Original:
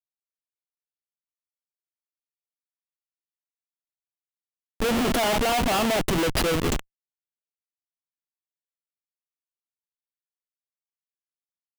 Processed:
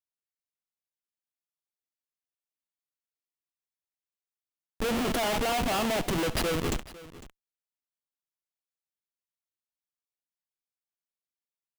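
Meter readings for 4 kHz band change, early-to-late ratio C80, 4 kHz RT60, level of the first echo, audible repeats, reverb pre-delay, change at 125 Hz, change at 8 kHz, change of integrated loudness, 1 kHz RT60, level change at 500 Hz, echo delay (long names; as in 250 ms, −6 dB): −5.0 dB, no reverb audible, no reverb audible, −17.5 dB, 2, no reverb audible, −5.0 dB, −5.0 dB, −5.0 dB, no reverb audible, −5.0 dB, 68 ms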